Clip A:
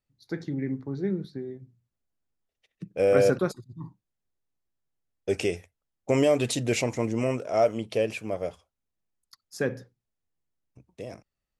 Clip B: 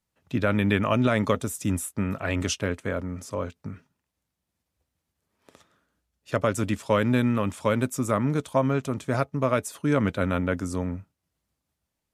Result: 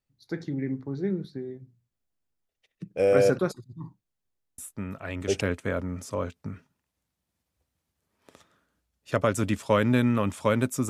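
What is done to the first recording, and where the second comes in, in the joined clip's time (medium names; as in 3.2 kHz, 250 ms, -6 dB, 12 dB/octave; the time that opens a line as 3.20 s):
clip A
4.58 s: add clip B from 1.78 s 0.83 s -7.5 dB
5.41 s: go over to clip B from 2.61 s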